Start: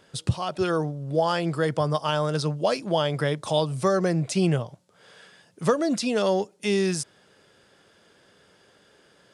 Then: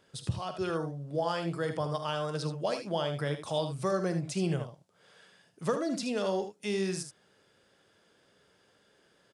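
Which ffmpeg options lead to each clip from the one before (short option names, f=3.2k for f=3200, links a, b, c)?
-af "aecho=1:1:48|77:0.224|0.355,volume=-8.5dB"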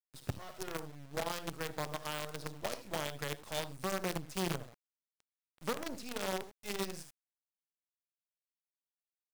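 -af "acrusher=bits=5:dc=4:mix=0:aa=0.000001,volume=-7dB"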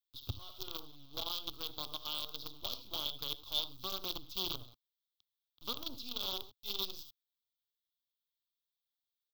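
-af "firequalizer=gain_entry='entry(110,0);entry(160,-21);entry(250,-6);entry(520,-14);entry(1200,-5);entry(1800,-28);entry(3400,11);entry(9300,-24);entry(14000,6)':delay=0.05:min_phase=1,volume=1dB"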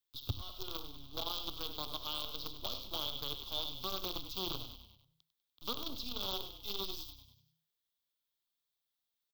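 -filter_complex "[0:a]asplit=6[a][b][c][d][e][f];[b]adelay=98,afreqshift=-32,volume=-13dB[g];[c]adelay=196,afreqshift=-64,volume=-18.8dB[h];[d]adelay=294,afreqshift=-96,volume=-24.7dB[i];[e]adelay=392,afreqshift=-128,volume=-30.5dB[j];[f]adelay=490,afreqshift=-160,volume=-36.4dB[k];[a][g][h][i][j][k]amix=inputs=6:normalize=0,acrossover=split=290|1600[l][m][n];[n]alimiter=level_in=6dB:limit=-24dB:level=0:latency=1:release=15,volume=-6dB[o];[l][m][o]amix=inputs=3:normalize=0,volume=3dB"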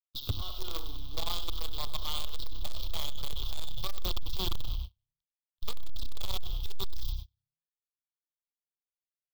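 -af "agate=range=-35dB:threshold=-55dB:ratio=16:detection=peak,asubboost=boost=11.5:cutoff=85,asoftclip=type=tanh:threshold=-29.5dB,volume=7.5dB"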